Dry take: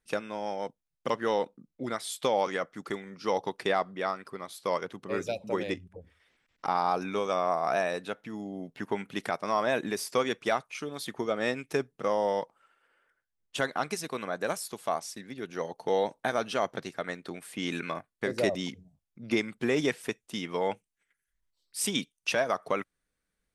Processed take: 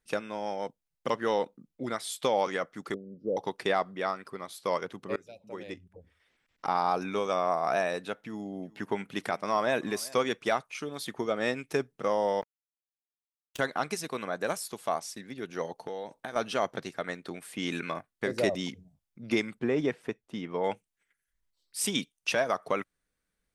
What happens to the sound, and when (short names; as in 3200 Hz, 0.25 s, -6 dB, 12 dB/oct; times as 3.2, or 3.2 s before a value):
2.94–3.37 elliptic low-pass 580 Hz
5.16–6.74 fade in, from -23.5 dB
8.14–10.18 echo 0.384 s -22.5 dB
12.41–13.59 power-law curve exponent 3
15.72–16.36 compressor 4:1, threshold -35 dBFS
19.59–20.64 LPF 1200 Hz 6 dB/oct